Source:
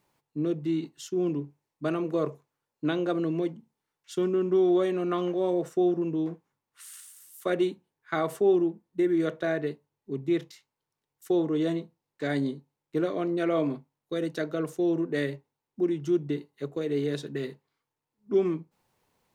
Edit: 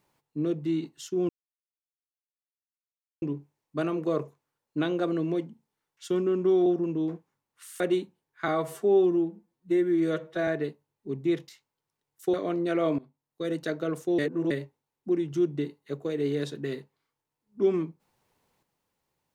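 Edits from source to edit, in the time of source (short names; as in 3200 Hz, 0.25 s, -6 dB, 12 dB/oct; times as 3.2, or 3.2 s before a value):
1.29 insert silence 1.93 s
4.73–5.84 cut
6.98–7.49 cut
8.17–9.5 stretch 1.5×
11.36–13.05 cut
13.7–14.23 fade in, from -21 dB
14.9–15.22 reverse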